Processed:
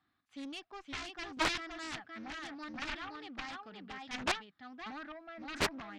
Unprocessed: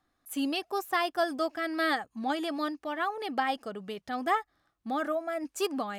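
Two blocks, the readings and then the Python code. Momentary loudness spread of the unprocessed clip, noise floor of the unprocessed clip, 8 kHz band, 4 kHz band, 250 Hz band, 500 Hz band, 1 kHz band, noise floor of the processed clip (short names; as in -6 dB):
7 LU, -78 dBFS, -1.5 dB, -2.5 dB, -11.0 dB, -13.5 dB, -11.0 dB, -80 dBFS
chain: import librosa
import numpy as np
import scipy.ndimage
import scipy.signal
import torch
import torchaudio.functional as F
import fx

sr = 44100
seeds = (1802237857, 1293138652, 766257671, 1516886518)

p1 = scipy.signal.sosfilt(scipy.signal.butter(2, 100.0, 'highpass', fs=sr, output='sos'), x)
p2 = p1 + fx.echo_single(p1, sr, ms=518, db=-4.0, dry=0)
p3 = fx.chopper(p2, sr, hz=0.73, depth_pct=60, duty_pct=15)
p4 = scipy.signal.sosfilt(scipy.signal.butter(4, 4200.0, 'lowpass', fs=sr, output='sos'), p3)
p5 = fx.cheby_harmonics(p4, sr, harmonics=(3, 5, 7), levels_db=(-27, -21, -10), full_scale_db=-16.0)
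p6 = fx.peak_eq(p5, sr, hz=530.0, db=-13.0, octaves=1.1)
p7 = fx.doppler_dist(p6, sr, depth_ms=0.79)
y = F.gain(torch.from_numpy(p7), 1.0).numpy()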